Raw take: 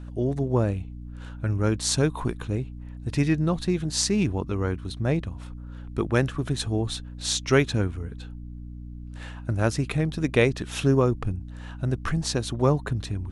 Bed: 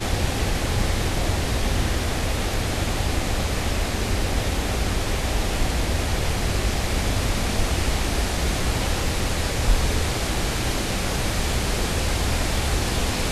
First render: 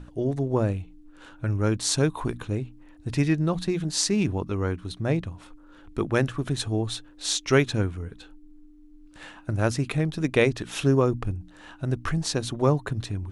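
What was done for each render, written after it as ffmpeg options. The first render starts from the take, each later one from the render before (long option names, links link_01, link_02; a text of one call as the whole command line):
ffmpeg -i in.wav -af "bandreject=frequency=60:width_type=h:width=6,bandreject=frequency=120:width_type=h:width=6,bandreject=frequency=180:width_type=h:width=6,bandreject=frequency=240:width_type=h:width=6" out.wav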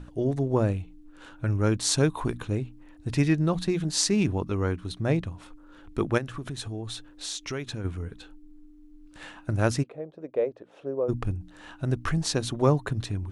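ffmpeg -i in.wav -filter_complex "[0:a]asplit=3[link_01][link_02][link_03];[link_01]afade=type=out:start_time=6.17:duration=0.02[link_04];[link_02]acompressor=threshold=-33dB:ratio=3:attack=3.2:release=140:knee=1:detection=peak,afade=type=in:start_time=6.17:duration=0.02,afade=type=out:start_time=7.84:duration=0.02[link_05];[link_03]afade=type=in:start_time=7.84:duration=0.02[link_06];[link_04][link_05][link_06]amix=inputs=3:normalize=0,asplit=3[link_07][link_08][link_09];[link_07]afade=type=out:start_time=9.82:duration=0.02[link_10];[link_08]bandpass=frequency=540:width_type=q:width=3.9,afade=type=in:start_time=9.82:duration=0.02,afade=type=out:start_time=11.08:duration=0.02[link_11];[link_09]afade=type=in:start_time=11.08:duration=0.02[link_12];[link_10][link_11][link_12]amix=inputs=3:normalize=0" out.wav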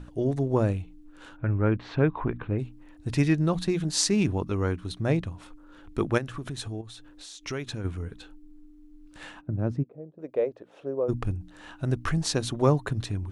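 ffmpeg -i in.wav -filter_complex "[0:a]asplit=3[link_01][link_02][link_03];[link_01]afade=type=out:start_time=1.36:duration=0.02[link_04];[link_02]lowpass=frequency=2500:width=0.5412,lowpass=frequency=2500:width=1.3066,afade=type=in:start_time=1.36:duration=0.02,afade=type=out:start_time=2.58:duration=0.02[link_05];[link_03]afade=type=in:start_time=2.58:duration=0.02[link_06];[link_04][link_05][link_06]amix=inputs=3:normalize=0,asettb=1/sr,asplit=3[link_07][link_08][link_09];[link_07]atrim=end=6.814[link_10];[link_08]atrim=start=6.81:end=7.46,asetpts=PTS-STARTPTS,afade=type=in:duration=0.004:curve=qsin,afade=type=out:start_time=0.646:duration=0.004:curve=qsin,acompressor=threshold=-44dB:ratio=3:attack=3.2:release=140:knee=1:detection=peak[link_11];[link_09]atrim=start=7.456[link_12];[link_10][link_11]acrossfade=duration=0.004:curve1=hsin:curve2=qsin[link_13];[link_13][link_12]acrossfade=duration=0.004:curve1=qsin:curve2=hsin,asplit=3[link_14][link_15][link_16];[link_14]afade=type=out:start_time=9.4:duration=0.02[link_17];[link_15]bandpass=frequency=180:width_type=q:width=0.83,afade=type=in:start_time=9.4:duration=0.02,afade=type=out:start_time=10.18:duration=0.02[link_18];[link_16]afade=type=in:start_time=10.18:duration=0.02[link_19];[link_17][link_18][link_19]amix=inputs=3:normalize=0" out.wav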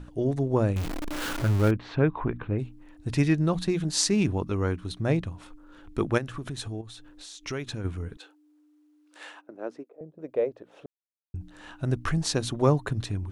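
ffmpeg -i in.wav -filter_complex "[0:a]asettb=1/sr,asplit=3[link_01][link_02][link_03];[link_01]atrim=end=0.764[link_04];[link_02]atrim=start=0.76:end=1.71,asetpts=PTS-STARTPTS,afade=type=in:duration=0.004:curve=qsin,afade=type=out:start_time=0.946:duration=0.004:curve=qsin,aeval=exprs='val(0)+0.5*0.0473*sgn(val(0))':channel_layout=same[link_05];[link_03]atrim=start=1.706[link_06];[link_04][link_05]acrossfade=duration=0.004:curve1=hsin:curve2=qsin[link_07];[link_07][link_06]acrossfade=duration=0.004:curve1=qsin:curve2=hsin,asettb=1/sr,asplit=3[link_08][link_09][link_10];[link_08]atrim=end=8.174[link_11];[link_09]atrim=start=8.17:end=10.01,asetpts=PTS-STARTPTS,afade=type=in:duration=0.004:curve=qsin,afade=type=out:start_time=1.836:duration=0.004:curve=qsin,highpass=frequency=370:width=0.5412,highpass=frequency=370:width=1.3066[link_12];[link_10]atrim=start=10.006[link_13];[link_11][link_12]acrossfade=duration=0.004:curve1=hsin:curve2=qsin[link_14];[link_14][link_13]acrossfade=duration=0.004:curve1=qsin:curve2=hsin,asplit=3[link_15][link_16][link_17];[link_15]atrim=end=10.86,asetpts=PTS-STARTPTS,afade=type=out:start_time=10.856:duration=0.004:curve=hsin[link_18];[link_16]atrim=start=10.86:end=11.34,asetpts=PTS-STARTPTS,volume=0[link_19];[link_17]atrim=start=11.34,asetpts=PTS-STARTPTS,afade=type=in:duration=0.004:curve=hsin[link_20];[link_18][link_19][link_20]concat=n=3:v=0:a=1" out.wav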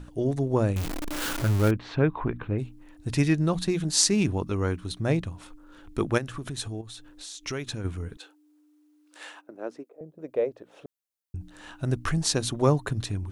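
ffmpeg -i in.wav -af "highshelf=frequency=5400:gain=7" out.wav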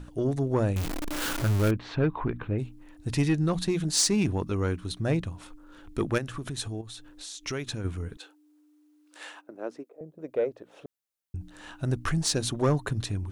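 ffmpeg -i in.wav -af "asoftclip=type=tanh:threshold=-16dB" out.wav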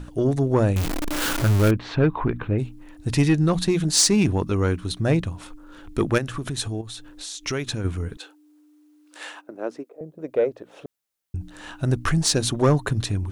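ffmpeg -i in.wav -af "volume=6dB" out.wav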